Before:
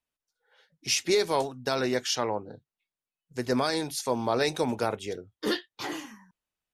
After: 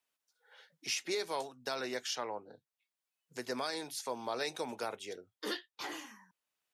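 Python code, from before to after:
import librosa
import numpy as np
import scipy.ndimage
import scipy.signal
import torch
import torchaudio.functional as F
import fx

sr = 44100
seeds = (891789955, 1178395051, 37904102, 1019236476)

y = fx.highpass(x, sr, hz=540.0, slope=6)
y = fx.band_squash(y, sr, depth_pct=40)
y = y * librosa.db_to_amplitude(-7.5)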